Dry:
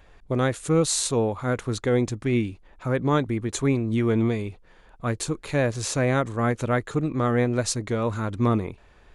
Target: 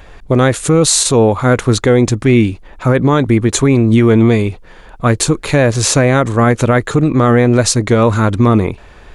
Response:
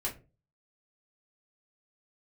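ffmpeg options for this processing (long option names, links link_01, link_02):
-af "alimiter=level_in=16.5dB:limit=-1dB:release=50:level=0:latency=1,volume=-1dB"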